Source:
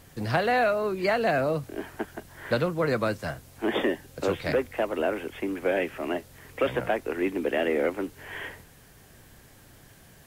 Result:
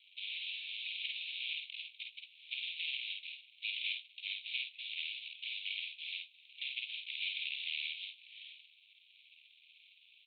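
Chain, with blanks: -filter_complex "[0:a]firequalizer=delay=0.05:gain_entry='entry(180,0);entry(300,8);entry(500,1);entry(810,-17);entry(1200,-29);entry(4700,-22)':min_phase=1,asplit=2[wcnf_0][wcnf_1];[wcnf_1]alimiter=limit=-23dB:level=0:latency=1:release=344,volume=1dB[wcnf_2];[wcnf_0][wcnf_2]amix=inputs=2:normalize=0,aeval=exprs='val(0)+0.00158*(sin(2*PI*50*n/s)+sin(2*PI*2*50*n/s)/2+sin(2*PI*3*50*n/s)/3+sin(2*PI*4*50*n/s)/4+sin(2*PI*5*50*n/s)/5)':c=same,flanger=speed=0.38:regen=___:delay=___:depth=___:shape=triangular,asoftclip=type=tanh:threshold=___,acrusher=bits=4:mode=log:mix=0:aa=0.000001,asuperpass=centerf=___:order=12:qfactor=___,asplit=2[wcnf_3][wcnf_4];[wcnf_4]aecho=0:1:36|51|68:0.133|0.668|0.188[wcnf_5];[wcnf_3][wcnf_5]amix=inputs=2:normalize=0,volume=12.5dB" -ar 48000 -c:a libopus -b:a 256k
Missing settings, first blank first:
-73, 1.1, 5.3, -21.5dB, 3000, 1.9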